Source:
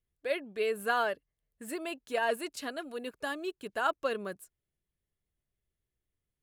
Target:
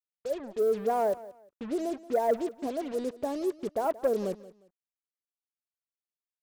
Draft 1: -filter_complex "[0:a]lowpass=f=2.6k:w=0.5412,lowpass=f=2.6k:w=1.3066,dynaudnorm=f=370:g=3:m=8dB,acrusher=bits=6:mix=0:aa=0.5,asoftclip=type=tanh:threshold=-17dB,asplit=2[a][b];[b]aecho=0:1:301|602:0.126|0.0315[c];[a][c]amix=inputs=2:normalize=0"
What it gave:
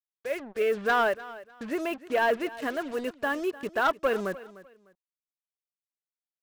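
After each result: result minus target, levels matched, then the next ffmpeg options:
2000 Hz band +16.5 dB; echo 0.123 s late
-filter_complex "[0:a]lowpass=f=770:w=0.5412,lowpass=f=770:w=1.3066,dynaudnorm=f=370:g=3:m=8dB,acrusher=bits=6:mix=0:aa=0.5,asoftclip=type=tanh:threshold=-17dB,asplit=2[a][b];[b]aecho=0:1:301|602:0.126|0.0315[c];[a][c]amix=inputs=2:normalize=0"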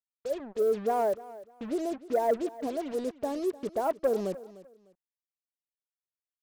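echo 0.123 s late
-filter_complex "[0:a]lowpass=f=770:w=0.5412,lowpass=f=770:w=1.3066,dynaudnorm=f=370:g=3:m=8dB,acrusher=bits=6:mix=0:aa=0.5,asoftclip=type=tanh:threshold=-17dB,asplit=2[a][b];[b]aecho=0:1:178|356:0.126|0.0315[c];[a][c]amix=inputs=2:normalize=0"

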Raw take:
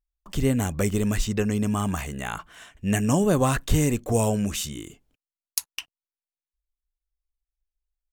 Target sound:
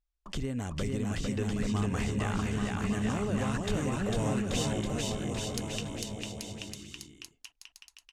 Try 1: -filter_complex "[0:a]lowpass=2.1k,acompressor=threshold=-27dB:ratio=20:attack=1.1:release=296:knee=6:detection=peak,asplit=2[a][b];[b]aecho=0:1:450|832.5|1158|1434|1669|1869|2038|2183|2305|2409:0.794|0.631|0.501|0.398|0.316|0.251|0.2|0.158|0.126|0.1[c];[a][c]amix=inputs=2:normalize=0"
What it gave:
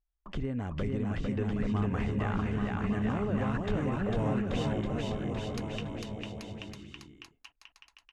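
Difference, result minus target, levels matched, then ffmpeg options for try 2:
8000 Hz band -15.5 dB
-filter_complex "[0:a]lowpass=7.1k,acompressor=threshold=-27dB:ratio=20:attack=1.1:release=296:knee=6:detection=peak,asplit=2[a][b];[b]aecho=0:1:450|832.5|1158|1434|1669|1869|2038|2183|2305|2409:0.794|0.631|0.501|0.398|0.316|0.251|0.2|0.158|0.126|0.1[c];[a][c]amix=inputs=2:normalize=0"

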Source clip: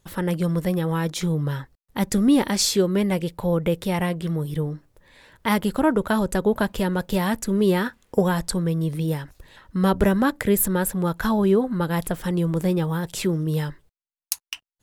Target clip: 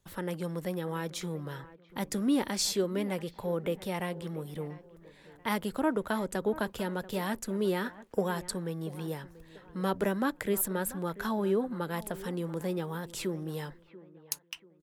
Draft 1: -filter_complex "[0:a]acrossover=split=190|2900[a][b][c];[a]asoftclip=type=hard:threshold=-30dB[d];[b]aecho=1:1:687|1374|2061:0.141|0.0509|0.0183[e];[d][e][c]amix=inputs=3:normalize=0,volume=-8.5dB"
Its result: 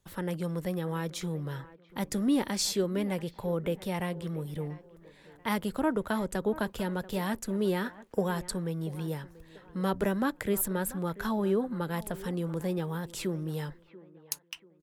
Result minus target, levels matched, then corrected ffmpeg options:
hard clip: distortion -5 dB
-filter_complex "[0:a]acrossover=split=190|2900[a][b][c];[a]asoftclip=type=hard:threshold=-39.5dB[d];[b]aecho=1:1:687|1374|2061:0.141|0.0509|0.0183[e];[d][e][c]amix=inputs=3:normalize=0,volume=-8.5dB"

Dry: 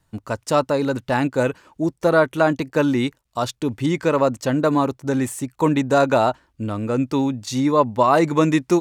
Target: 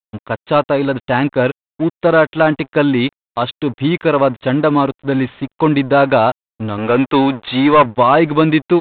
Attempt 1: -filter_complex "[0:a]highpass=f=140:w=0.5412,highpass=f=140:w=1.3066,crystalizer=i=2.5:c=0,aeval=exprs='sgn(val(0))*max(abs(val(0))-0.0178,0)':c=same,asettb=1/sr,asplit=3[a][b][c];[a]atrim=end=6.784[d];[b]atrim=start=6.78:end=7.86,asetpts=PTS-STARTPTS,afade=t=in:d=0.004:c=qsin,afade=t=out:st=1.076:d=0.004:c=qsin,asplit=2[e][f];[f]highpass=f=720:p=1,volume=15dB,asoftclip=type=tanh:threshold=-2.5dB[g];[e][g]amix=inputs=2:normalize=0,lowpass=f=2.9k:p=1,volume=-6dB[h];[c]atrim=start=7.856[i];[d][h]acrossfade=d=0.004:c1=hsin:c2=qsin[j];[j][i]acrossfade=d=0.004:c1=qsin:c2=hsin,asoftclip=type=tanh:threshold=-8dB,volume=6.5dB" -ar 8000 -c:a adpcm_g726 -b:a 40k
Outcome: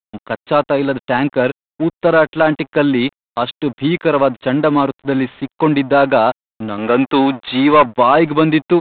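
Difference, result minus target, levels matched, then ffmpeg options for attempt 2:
125 Hz band -3.0 dB
-filter_complex "[0:a]crystalizer=i=2.5:c=0,aeval=exprs='sgn(val(0))*max(abs(val(0))-0.0178,0)':c=same,asettb=1/sr,asplit=3[a][b][c];[a]atrim=end=6.784[d];[b]atrim=start=6.78:end=7.86,asetpts=PTS-STARTPTS,afade=t=in:d=0.004:c=qsin,afade=t=out:st=1.076:d=0.004:c=qsin,asplit=2[e][f];[f]highpass=f=720:p=1,volume=15dB,asoftclip=type=tanh:threshold=-2.5dB[g];[e][g]amix=inputs=2:normalize=0,lowpass=f=2.9k:p=1,volume=-6dB[h];[c]atrim=start=7.856[i];[d][h]acrossfade=d=0.004:c1=hsin:c2=qsin[j];[j][i]acrossfade=d=0.004:c1=qsin:c2=hsin,asoftclip=type=tanh:threshold=-8dB,volume=6.5dB" -ar 8000 -c:a adpcm_g726 -b:a 40k

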